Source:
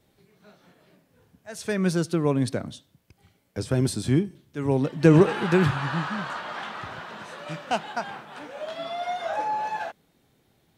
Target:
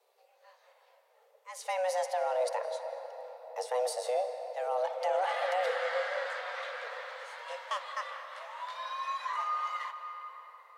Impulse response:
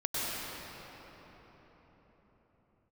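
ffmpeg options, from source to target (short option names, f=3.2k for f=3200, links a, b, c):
-filter_complex "[0:a]alimiter=limit=-16.5dB:level=0:latency=1:release=13,afreqshift=370,asplit=2[a][b];[1:a]atrim=start_sample=2205,highshelf=f=8.1k:g=-10,adelay=58[c];[b][c]afir=irnorm=-1:irlink=0,volume=-15.5dB[d];[a][d]amix=inputs=2:normalize=0,volume=-6.5dB"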